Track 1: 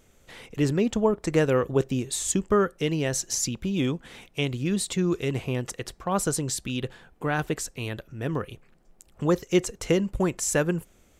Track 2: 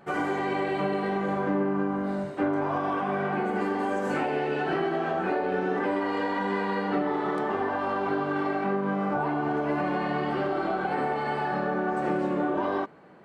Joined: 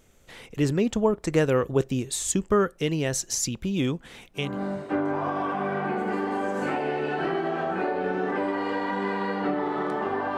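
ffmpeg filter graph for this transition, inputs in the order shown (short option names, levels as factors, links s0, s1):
-filter_complex "[0:a]apad=whole_dur=10.37,atrim=end=10.37,atrim=end=4.62,asetpts=PTS-STARTPTS[s0];[1:a]atrim=start=1.82:end=7.85,asetpts=PTS-STARTPTS[s1];[s0][s1]acrossfade=d=0.28:c1=tri:c2=tri"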